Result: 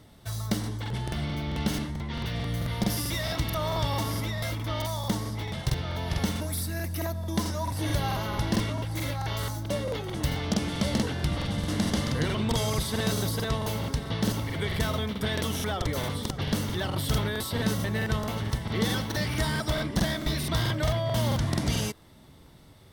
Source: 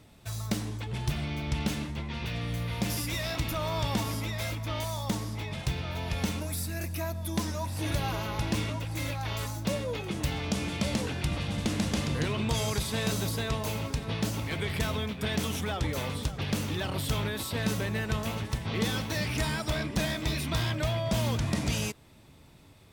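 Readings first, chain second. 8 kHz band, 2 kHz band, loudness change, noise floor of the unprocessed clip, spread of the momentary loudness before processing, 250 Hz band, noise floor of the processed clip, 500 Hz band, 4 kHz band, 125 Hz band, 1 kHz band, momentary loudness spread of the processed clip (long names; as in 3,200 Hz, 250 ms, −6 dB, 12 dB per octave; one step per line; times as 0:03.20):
+1.0 dB, +1.0 dB, +2.0 dB, −54 dBFS, 4 LU, +2.5 dB, −51 dBFS, +2.5 dB, +2.0 dB, +2.5 dB, +2.5 dB, 4 LU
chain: parametric band 7,200 Hz −5.5 dB 0.24 octaves
notch filter 2,500 Hz, Q 5.8
regular buffer underruns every 0.22 s, samples 2,048, repeat, from 0:00.59
level +2.5 dB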